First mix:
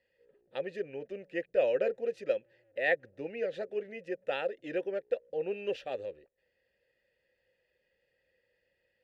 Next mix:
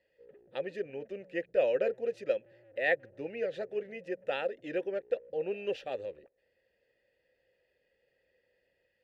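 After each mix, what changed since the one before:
background +9.5 dB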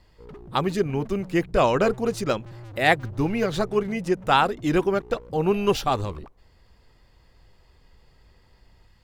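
background: remove distance through air 470 m; master: remove vowel filter e

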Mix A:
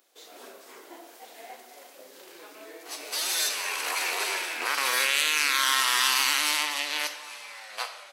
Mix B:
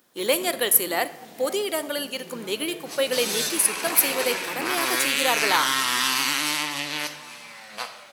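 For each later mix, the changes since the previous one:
speech: unmuted; master: remove Bessel high-pass 520 Hz, order 6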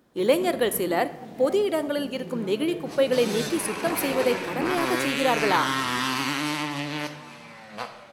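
master: add tilt EQ -3.5 dB/octave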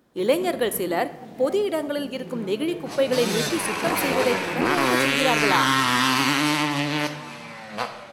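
second sound +6.0 dB

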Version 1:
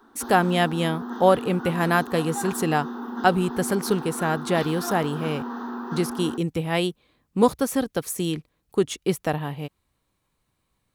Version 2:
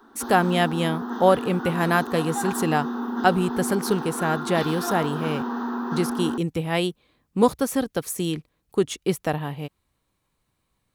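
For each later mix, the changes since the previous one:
background: send +11.0 dB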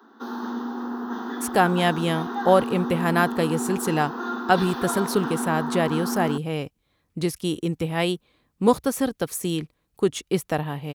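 speech: entry +1.25 s

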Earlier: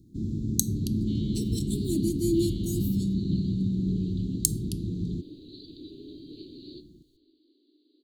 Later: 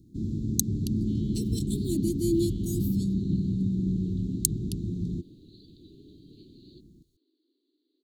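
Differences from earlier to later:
second sound -8.0 dB; reverb: off

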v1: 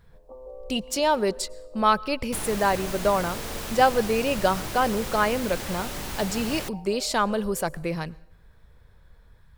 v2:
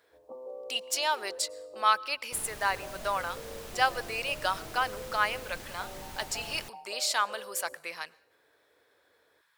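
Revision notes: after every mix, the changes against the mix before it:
speech: add high-pass 1.2 kHz 12 dB/octave; second sound -11.0 dB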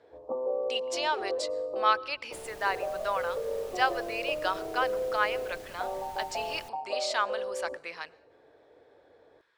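speech: add distance through air 99 m; first sound +11.5 dB; second sound -5.5 dB

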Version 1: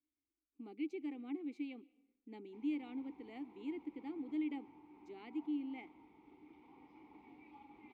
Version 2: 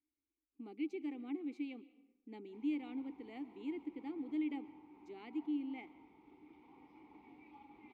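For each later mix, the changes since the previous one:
speech: send +7.0 dB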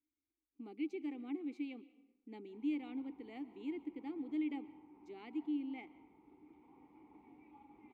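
background: add tape spacing loss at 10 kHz 29 dB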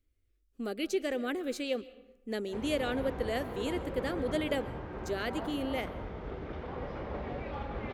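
background +10.5 dB; master: remove vowel filter u

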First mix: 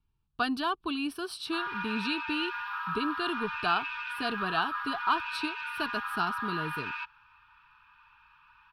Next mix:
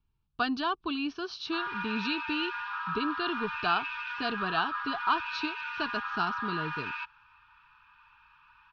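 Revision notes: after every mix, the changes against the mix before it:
master: add brick-wall FIR low-pass 6.8 kHz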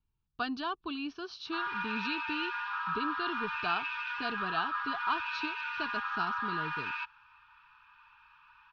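speech -5.0 dB

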